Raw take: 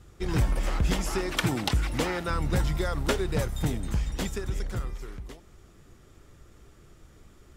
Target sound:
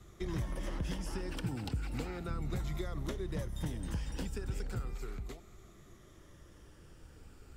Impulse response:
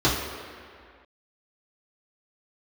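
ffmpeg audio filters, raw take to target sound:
-filter_complex "[0:a]afftfilt=real='re*pow(10,6/40*sin(2*PI*(1.2*log(max(b,1)*sr/1024/100)/log(2)-(-0.35)*(pts-256)/sr)))':imag='im*pow(10,6/40*sin(2*PI*(1.2*log(max(b,1)*sr/1024/100)/log(2)-(-0.35)*(pts-256)/sr)))':win_size=1024:overlap=0.75,acrossover=split=130|400[a][b][c];[a]acompressor=threshold=-34dB:ratio=4[d];[b]acompressor=threshold=-39dB:ratio=4[e];[c]acompressor=threshold=-45dB:ratio=4[f];[d][e][f]amix=inputs=3:normalize=0,volume=-2.5dB"

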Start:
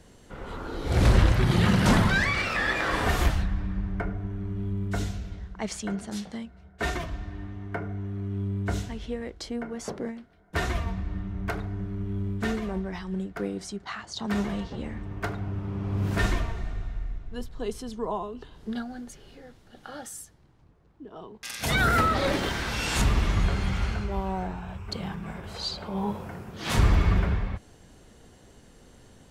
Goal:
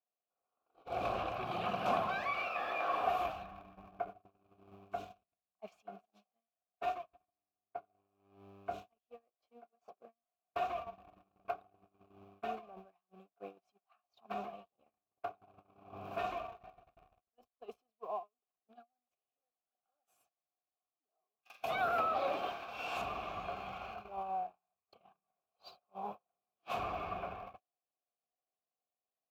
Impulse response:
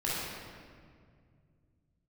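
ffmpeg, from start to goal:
-filter_complex "[0:a]aeval=exprs='val(0)+0.5*0.0126*sgn(val(0))':c=same,aexciter=amount=8.3:drive=4.7:freq=12k,agate=range=-44dB:threshold=-27dB:ratio=16:detection=peak,asplit=3[a][b][c];[a]bandpass=f=730:t=q:w=8,volume=0dB[d];[b]bandpass=f=1.09k:t=q:w=8,volume=-6dB[e];[c]bandpass=f=2.44k:t=q:w=8,volume=-9dB[f];[d][e][f]amix=inputs=3:normalize=0,volume=2dB"

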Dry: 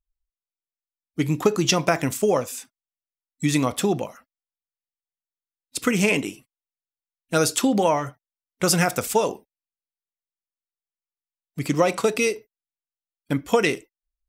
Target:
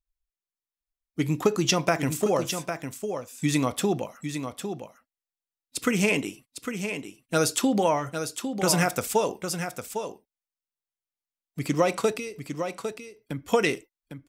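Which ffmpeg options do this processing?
-filter_complex "[0:a]asettb=1/sr,asplit=3[a][b][c];[a]atrim=end=12.114[d];[b]atrim=start=12.11:end=13.48,asetpts=PTS-STARTPTS,afade=t=in:d=0.004:c=qsin,afade=t=out:st=1.366:d=0.004:c=qsin,acrossover=split=130[e][f];[f]acompressor=threshold=-30dB:ratio=6[g];[e][g]amix=inputs=2:normalize=0[h];[c]atrim=start=13.476[i];[d][h]acrossfade=d=0.004:c1=hsin:c2=qsin[j];[j][i]acrossfade=d=0.004:c1=qsin:c2=hsin,aecho=1:1:804:0.398,volume=-3dB"

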